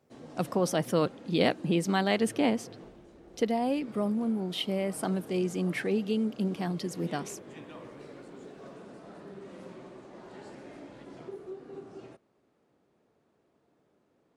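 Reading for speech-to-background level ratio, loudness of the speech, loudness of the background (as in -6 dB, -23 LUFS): 17.5 dB, -30.0 LUFS, -47.5 LUFS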